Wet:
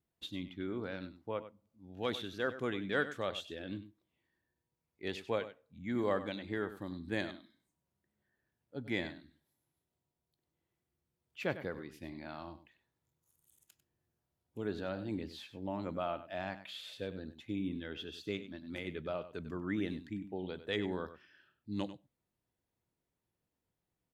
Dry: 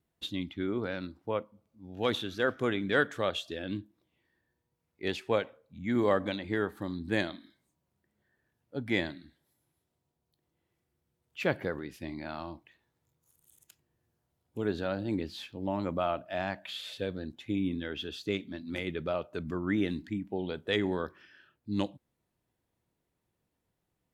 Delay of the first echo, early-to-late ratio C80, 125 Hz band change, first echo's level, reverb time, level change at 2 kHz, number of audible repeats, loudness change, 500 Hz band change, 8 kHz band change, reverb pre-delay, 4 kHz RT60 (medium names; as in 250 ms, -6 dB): 97 ms, no reverb, -6.5 dB, -13.0 dB, no reverb, -6.5 dB, 1, -6.5 dB, -6.5 dB, -6.5 dB, no reverb, no reverb